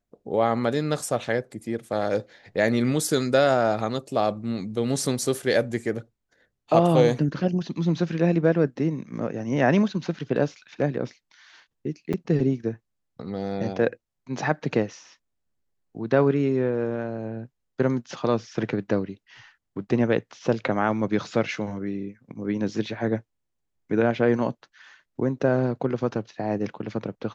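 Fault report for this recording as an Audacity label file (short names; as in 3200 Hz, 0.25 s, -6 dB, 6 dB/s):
12.130000	12.140000	gap 6.2 ms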